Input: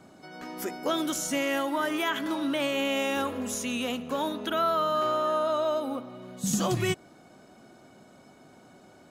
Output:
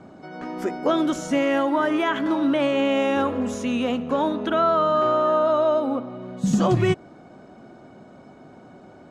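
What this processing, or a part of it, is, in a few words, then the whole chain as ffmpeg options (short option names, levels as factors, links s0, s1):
through cloth: -af "lowpass=7800,highshelf=f=2400:g=-14,volume=2.66"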